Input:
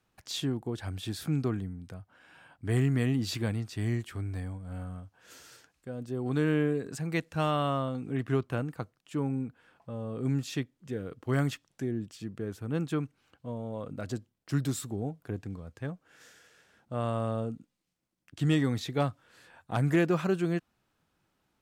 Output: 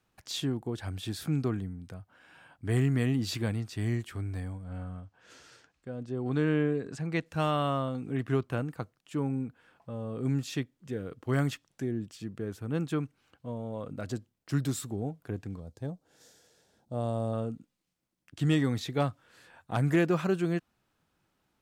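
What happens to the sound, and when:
0:04.64–0:07.26: high-frequency loss of the air 67 metres
0:15.60–0:17.33: flat-topped bell 1,800 Hz −11 dB

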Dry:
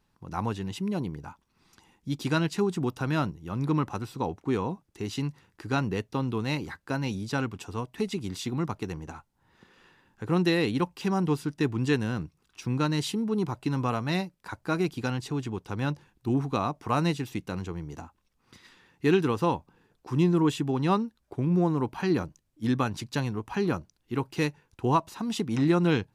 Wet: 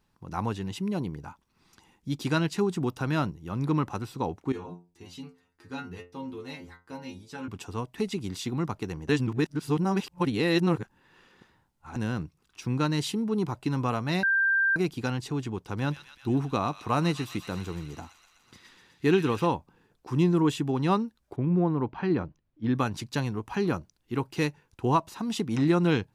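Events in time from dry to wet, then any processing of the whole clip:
0:04.52–0:07.48: stiff-string resonator 86 Hz, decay 0.36 s, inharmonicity 0.002
0:09.09–0:11.96: reverse
0:14.23–0:14.76: beep over 1,580 Hz −20.5 dBFS
0:15.63–0:19.47: delay with a high-pass on its return 125 ms, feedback 73%, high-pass 2,300 Hz, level −7 dB
0:21.36–0:22.75: high-frequency loss of the air 290 metres

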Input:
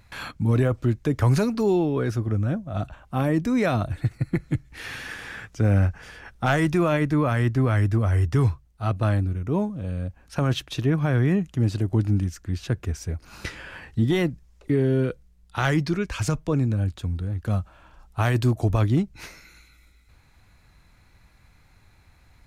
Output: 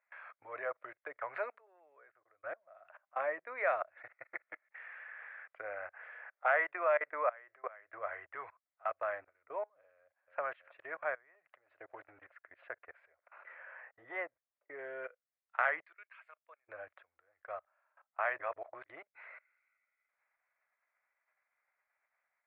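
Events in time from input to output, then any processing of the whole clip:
0:01.58–0:02.43: noise gate −18 dBFS, range −18 dB
0:04.54–0:05.28: band-pass filter 330–3,300 Hz
0:05.99–0:07.94: low shelf with overshoot 290 Hz −7 dB, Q 1.5
0:09.95–0:10.39: delay throw 320 ms, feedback 75%, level −8.5 dB
0:11.14–0:11.76: downward compressor, threshold −25 dBFS
0:13.14–0:14.79: low-pass filter 1,300 Hz 6 dB per octave
0:15.81–0:16.68: first difference
0:18.40–0:18.86: reverse
whole clip: output level in coarse steps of 24 dB; elliptic band-pass filter 600–2,100 Hz, stop band 50 dB; parametric band 860 Hz −7 dB 0.83 octaves; level +1 dB

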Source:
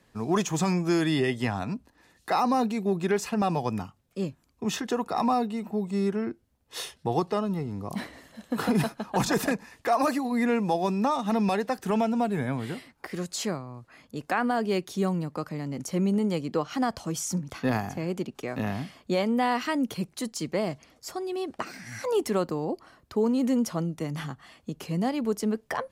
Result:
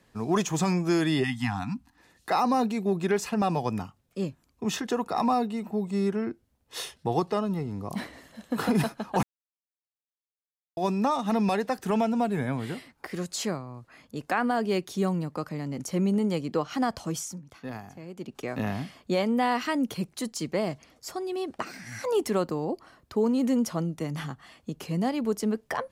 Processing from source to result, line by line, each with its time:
0:01.24–0:01.98: time-frequency box erased 320–690 Hz
0:09.23–0:10.77: silence
0:17.15–0:18.36: duck −11.5 dB, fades 0.20 s

